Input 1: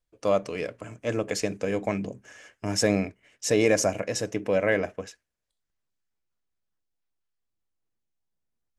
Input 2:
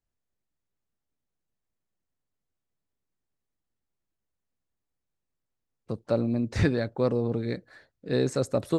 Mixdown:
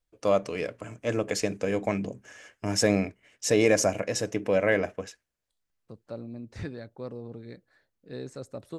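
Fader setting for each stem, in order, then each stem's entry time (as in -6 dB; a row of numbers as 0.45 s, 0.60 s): 0.0 dB, -13.0 dB; 0.00 s, 0.00 s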